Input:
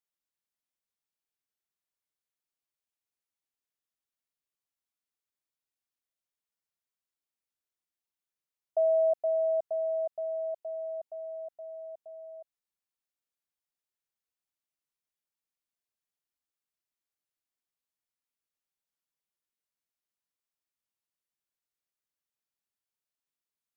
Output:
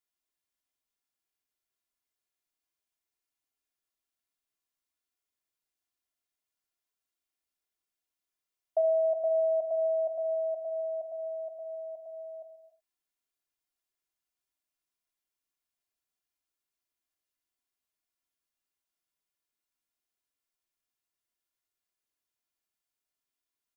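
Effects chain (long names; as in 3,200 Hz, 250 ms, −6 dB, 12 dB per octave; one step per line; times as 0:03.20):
comb filter 2.9 ms, depth 48%
downward compressor, threshold −24 dBFS, peak gain reduction 4 dB
convolution reverb, pre-delay 3 ms, DRR 5.5 dB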